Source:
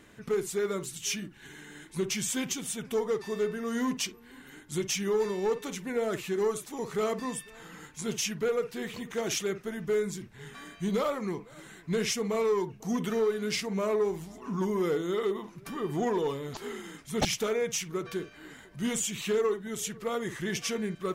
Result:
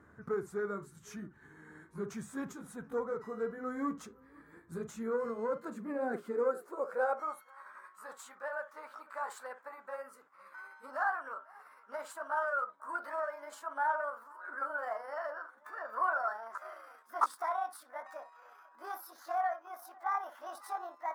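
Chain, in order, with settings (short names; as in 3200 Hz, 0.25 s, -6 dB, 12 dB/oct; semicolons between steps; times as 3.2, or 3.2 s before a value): gliding pitch shift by +9.5 st starting unshifted; high-pass sweep 73 Hz -> 1000 Hz, 4.96–7.53; resonant high shelf 2000 Hz -12.5 dB, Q 3; gain -6.5 dB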